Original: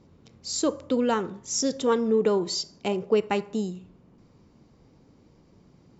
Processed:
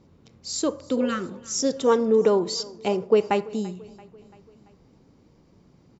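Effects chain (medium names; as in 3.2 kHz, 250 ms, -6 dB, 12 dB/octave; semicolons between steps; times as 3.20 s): 0.99–1.27 s: spectral replace 400–1100 Hz both; 1.00–3.50 s: dynamic bell 640 Hz, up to +5 dB, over -33 dBFS, Q 0.75; feedback delay 338 ms, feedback 56%, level -22 dB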